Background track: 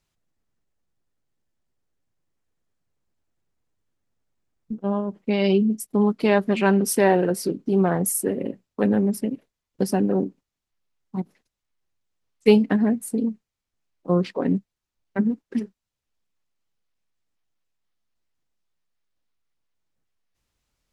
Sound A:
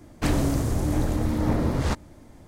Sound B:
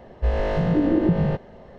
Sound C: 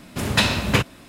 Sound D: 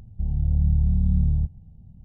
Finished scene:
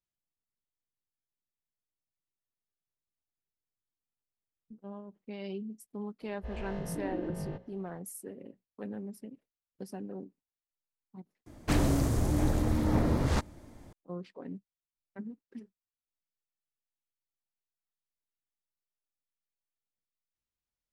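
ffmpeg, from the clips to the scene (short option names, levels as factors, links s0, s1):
-filter_complex "[0:a]volume=0.1[s0];[2:a]bandreject=f=60:t=h:w=6,bandreject=f=120:t=h:w=6,bandreject=f=180:t=h:w=6,bandreject=f=240:t=h:w=6,bandreject=f=300:t=h:w=6,bandreject=f=360:t=h:w=6,bandreject=f=420:t=h:w=6,bandreject=f=480:t=h:w=6,bandreject=f=540:t=h:w=6[s1];[s0]asplit=2[s2][s3];[s2]atrim=end=11.464[s4];[1:a]atrim=end=2.47,asetpts=PTS-STARTPTS,volume=0.668[s5];[s3]atrim=start=13.926[s6];[s1]atrim=end=1.78,asetpts=PTS-STARTPTS,volume=0.15,afade=t=in:d=0.004:c=hsin,afade=t=out:st=1.776:d=0.004:c=hsin,adelay=6210[s7];[s4][s5]acrossfade=d=0.004:c1=hsin:c2=hsin[s8];[s8][s6]acrossfade=d=0.004:c1=hsin:c2=hsin[s9];[s9][s7]amix=inputs=2:normalize=0"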